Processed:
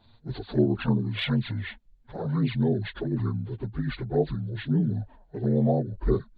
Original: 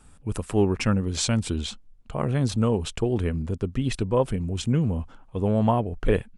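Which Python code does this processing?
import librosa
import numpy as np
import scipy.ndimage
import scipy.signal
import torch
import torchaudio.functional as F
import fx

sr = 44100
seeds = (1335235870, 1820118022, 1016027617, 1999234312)

y = fx.partial_stretch(x, sr, pct=77)
y = fx.env_flanger(y, sr, rest_ms=9.2, full_db=-18.0)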